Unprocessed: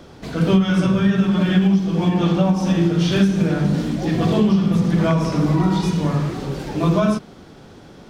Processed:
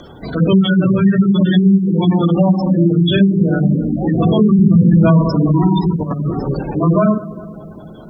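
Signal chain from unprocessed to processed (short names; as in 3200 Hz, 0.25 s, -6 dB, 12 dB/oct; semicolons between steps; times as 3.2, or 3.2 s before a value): on a send: darkening echo 0.201 s, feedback 70%, low-pass 2500 Hz, level -18 dB; on the sum: spectral gate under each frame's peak -20 dB strong; 4.59–5.22 low shelf 200 Hz +8.5 dB; 5.96–6.63 negative-ratio compressor -22 dBFS, ratio -0.5; synth low-pass 6100 Hz, resonance Q 14; high shelf 2100 Hz +6 dB; requantised 12-bit, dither none; maximiser +6.5 dB; gain -2 dB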